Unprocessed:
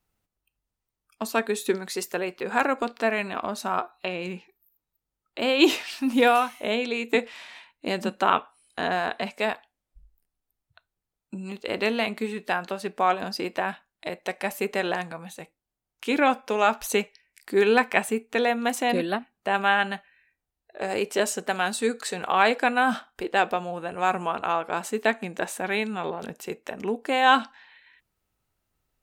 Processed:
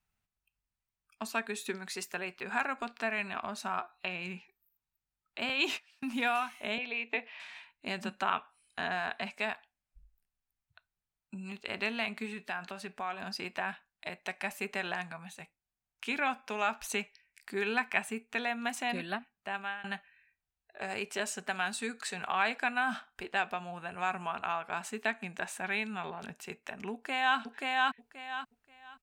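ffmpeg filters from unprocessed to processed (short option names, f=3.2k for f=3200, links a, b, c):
-filter_complex "[0:a]asettb=1/sr,asplit=3[a][b][c];[a]atrim=end=5.494[d];[b]atrim=start=5.49:end=6.08,asetpts=PTS-STARTPTS,afade=t=in:d=0.004:c=qsin,afade=t=out:st=0.586:d=0.004:c=qsin,agate=range=-24dB:threshold=-31dB:ratio=16:release=100:detection=peak[e];[c]atrim=start=6.076[f];[d][e]acrossfade=d=0.004:c1=hsin:c2=qsin[g];[g][f]acrossfade=d=0.004:c1=qsin:c2=hsin,asettb=1/sr,asplit=3[h][i][j];[h]atrim=end=6.784[k];[i]atrim=start=6.78:end=7.4,asetpts=PTS-STARTPTS,afade=t=in:d=0.004:c=qsin,afade=t=out:st=0.616:d=0.004:c=qsin,highpass=f=280:w=0.5412,highpass=f=280:w=1.3066,equalizer=f=370:t=q:w=4:g=-5,equalizer=f=600:t=q:w=4:g=6,equalizer=f=1.4k:t=q:w=4:g=-7,equalizer=f=3.8k:t=q:w=4:g=-5,lowpass=f=4k:w=0.5412,lowpass=f=4k:w=1.3066[l];[j]atrim=start=7.396[m];[k][l]acrossfade=d=0.004:c1=hsin:c2=qsin[n];[n][m]acrossfade=d=0.004:c1=qsin:c2=hsin,asettb=1/sr,asplit=3[o][p][q];[o]atrim=end=12.334[r];[p]atrim=start=12.33:end=13.27,asetpts=PTS-STARTPTS,afade=t=in:d=0.004:c=qsin,afade=t=out:st=0.936:d=0.004:c=qsin,acompressor=threshold=-29dB:ratio=2:attack=3.2:release=140:knee=1:detection=peak[s];[q]atrim=start=13.266[t];[r][s]acrossfade=d=0.004:c1=hsin:c2=qsin[u];[u][t]acrossfade=d=0.004:c1=qsin:c2=hsin,asplit=2[v][w];[w]afade=t=in:st=26.92:d=0.01,afade=t=out:st=27.38:d=0.01,aecho=0:1:530|1060|1590:0.891251|0.17825|0.03565[x];[v][x]amix=inputs=2:normalize=0,asplit=2[y][z];[y]atrim=end=19.84,asetpts=PTS-STARTPTS,afade=t=out:st=19.17:d=0.67:silence=0.0707946[aa];[z]atrim=start=19.84,asetpts=PTS-STARTPTS,afade=t=in:d=0.004:c=hsin:silence=0.0707946[ab];[aa][ab]concat=n=2:v=0:a=1,equalizer=f=1.6k:w=3.4:g=3.5,acompressor=threshold=-26dB:ratio=1.5,equalizer=f=315:t=o:w=0.33:g=-12,equalizer=f=500:t=o:w=0.33:g=-12,equalizer=f=2.5k:t=o:w=0.33:g=5,equalizer=f=12.5k:t=o:w=0.33:g=-7,volume=-6dB"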